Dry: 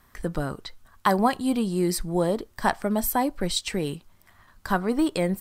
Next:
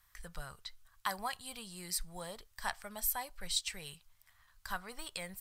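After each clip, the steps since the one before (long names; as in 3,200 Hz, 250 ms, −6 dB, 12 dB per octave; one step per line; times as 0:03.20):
guitar amp tone stack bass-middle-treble 10-0-10
level −5 dB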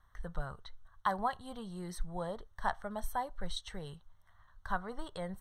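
moving average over 18 samples
level +8 dB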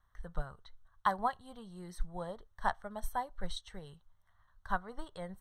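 expander for the loud parts 1.5 to 1, over −44 dBFS
level +2.5 dB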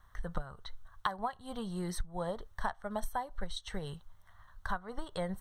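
downward compressor 10 to 1, threshold −42 dBFS, peak gain reduction 18.5 dB
level +11 dB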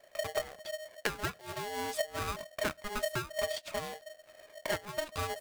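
ring modulator with a square carrier 620 Hz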